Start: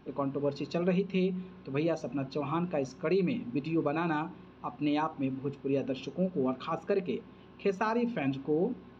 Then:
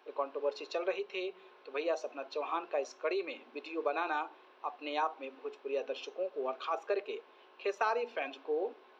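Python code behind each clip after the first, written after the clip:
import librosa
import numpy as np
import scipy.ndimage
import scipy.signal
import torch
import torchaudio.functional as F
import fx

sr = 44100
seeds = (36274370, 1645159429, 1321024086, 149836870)

y = scipy.signal.sosfilt(scipy.signal.cheby2(4, 50, 170.0, 'highpass', fs=sr, output='sos'), x)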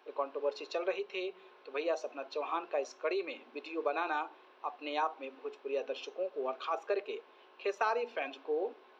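y = x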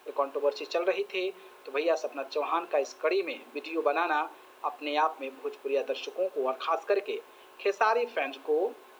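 y = fx.quant_dither(x, sr, seeds[0], bits=12, dither='triangular')
y = y * librosa.db_to_amplitude(6.5)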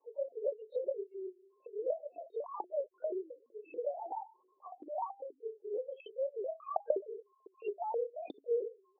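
y = fx.spec_topn(x, sr, count=1)
y = fx.lpc_vocoder(y, sr, seeds[1], excitation='whisper', order=10)
y = fx.ladder_highpass(y, sr, hz=390.0, resonance_pct=40)
y = y * librosa.db_to_amplitude(3.0)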